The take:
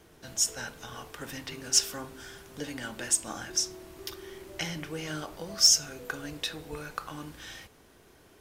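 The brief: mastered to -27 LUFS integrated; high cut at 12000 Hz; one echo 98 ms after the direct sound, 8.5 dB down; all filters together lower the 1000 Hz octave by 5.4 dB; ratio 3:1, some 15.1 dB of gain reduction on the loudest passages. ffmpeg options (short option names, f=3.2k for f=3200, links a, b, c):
-af "lowpass=12k,equalizer=f=1k:t=o:g=-7.5,acompressor=threshold=-37dB:ratio=3,aecho=1:1:98:0.376,volume=12.5dB"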